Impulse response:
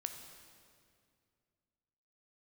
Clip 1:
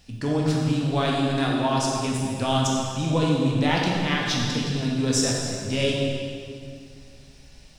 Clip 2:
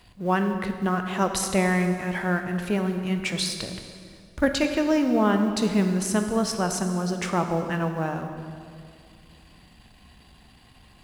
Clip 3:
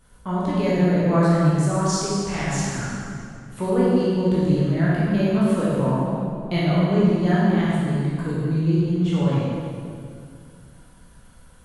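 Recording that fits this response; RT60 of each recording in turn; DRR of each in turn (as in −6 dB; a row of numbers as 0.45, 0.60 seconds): 2; 2.3, 2.3, 2.3 seconds; −2.5, 5.5, −8.5 decibels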